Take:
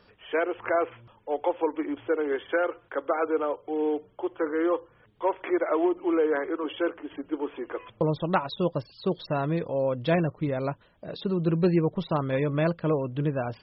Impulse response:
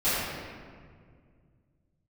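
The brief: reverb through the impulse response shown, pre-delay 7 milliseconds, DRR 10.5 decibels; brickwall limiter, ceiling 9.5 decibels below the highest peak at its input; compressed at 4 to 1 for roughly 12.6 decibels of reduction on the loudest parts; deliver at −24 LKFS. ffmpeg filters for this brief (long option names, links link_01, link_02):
-filter_complex "[0:a]acompressor=threshold=-35dB:ratio=4,alimiter=level_in=6.5dB:limit=-24dB:level=0:latency=1,volume=-6.5dB,asplit=2[link_01][link_02];[1:a]atrim=start_sample=2205,adelay=7[link_03];[link_02][link_03]afir=irnorm=-1:irlink=0,volume=-25dB[link_04];[link_01][link_04]amix=inputs=2:normalize=0,volume=15.5dB"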